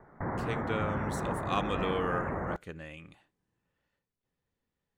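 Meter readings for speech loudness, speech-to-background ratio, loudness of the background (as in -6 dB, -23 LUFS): -36.5 LUFS, -1.5 dB, -35.0 LUFS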